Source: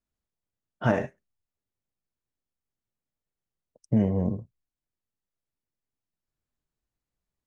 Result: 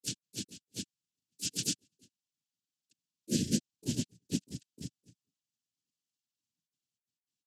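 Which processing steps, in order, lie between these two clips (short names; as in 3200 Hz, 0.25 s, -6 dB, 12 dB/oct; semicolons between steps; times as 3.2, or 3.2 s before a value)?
FFT order left unsorted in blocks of 16 samples; careless resampling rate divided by 3×, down none, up zero stuff; Chebyshev band-stop 170–3200 Hz, order 4; bell 500 Hz +11 dB 2.2 oct; notches 60/120/180/240 Hz; comb 4 ms, depth 91%; flutter echo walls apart 11.9 m, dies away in 0.4 s; noise vocoder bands 8; grains 0.1 s, grains 20/s, spray 0.984 s, pitch spread up and down by 0 st; harmoniser +7 st -10 dB; spectral gain 2.32–3.72, 680–1400 Hz -27 dB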